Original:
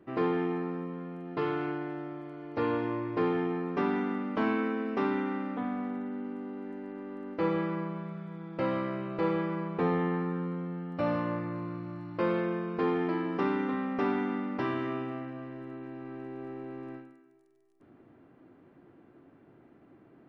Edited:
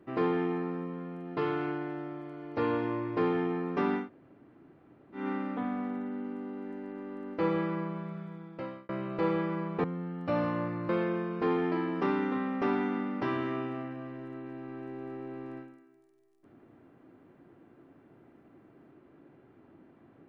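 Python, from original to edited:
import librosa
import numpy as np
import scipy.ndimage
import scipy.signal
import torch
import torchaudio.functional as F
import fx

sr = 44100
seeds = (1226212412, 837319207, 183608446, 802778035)

y = fx.edit(x, sr, fx.room_tone_fill(start_s=4.02, length_s=1.18, crossfade_s=0.16),
    fx.fade_out_span(start_s=8.21, length_s=0.68),
    fx.cut(start_s=9.84, length_s=0.71),
    fx.cut(start_s=11.6, length_s=0.66), tone=tone)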